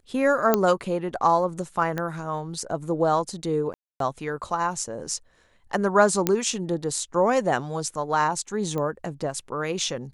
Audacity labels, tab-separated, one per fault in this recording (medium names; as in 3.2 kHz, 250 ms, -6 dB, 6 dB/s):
0.540000	0.540000	pop -5 dBFS
1.980000	1.980000	pop -15 dBFS
3.740000	4.000000	dropout 263 ms
6.270000	6.270000	pop -5 dBFS
8.780000	8.780000	pop -18 dBFS